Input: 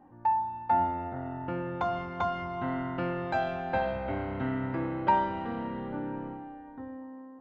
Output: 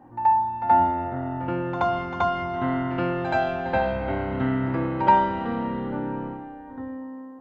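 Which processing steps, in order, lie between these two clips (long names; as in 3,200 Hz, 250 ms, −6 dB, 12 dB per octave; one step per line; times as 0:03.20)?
backwards echo 77 ms −10.5 dB
level +6 dB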